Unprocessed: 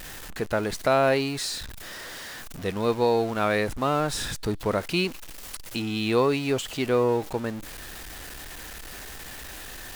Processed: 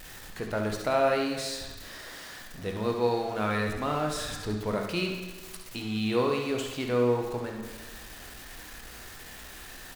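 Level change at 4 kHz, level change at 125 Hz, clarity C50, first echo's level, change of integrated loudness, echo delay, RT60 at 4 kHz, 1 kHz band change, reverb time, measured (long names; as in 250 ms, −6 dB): −4.5 dB, −3.0 dB, 3.0 dB, −9.5 dB, −3.5 dB, 66 ms, 1.2 s, −4.0 dB, 1.3 s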